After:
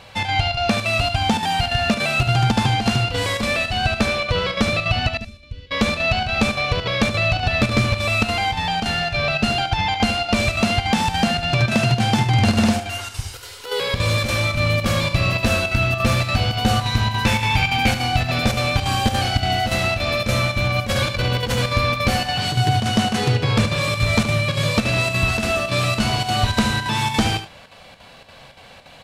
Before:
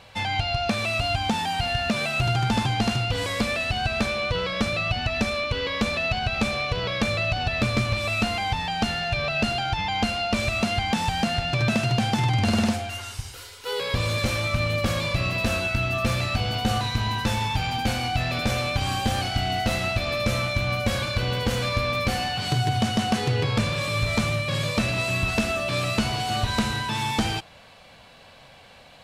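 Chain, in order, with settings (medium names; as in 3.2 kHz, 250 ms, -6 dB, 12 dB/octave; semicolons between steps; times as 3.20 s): 5.17–5.71 s: amplifier tone stack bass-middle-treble 10-0-1; square tremolo 3.5 Hz, depth 60%, duty 80%; 17.25–17.91 s: peaking EQ 2.3 kHz +9 dB 0.5 oct; delay 74 ms -11 dB; 20.65–21.62 s: compressor with a negative ratio -25 dBFS, ratio -0.5; trim +5.5 dB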